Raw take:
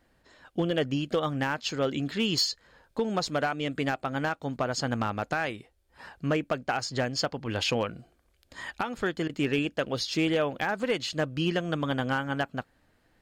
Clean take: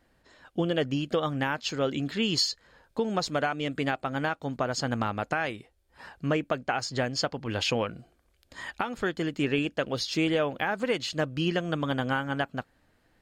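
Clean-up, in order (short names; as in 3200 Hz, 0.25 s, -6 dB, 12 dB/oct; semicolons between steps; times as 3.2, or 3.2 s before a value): clip repair -18.5 dBFS; interpolate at 9.28, 12 ms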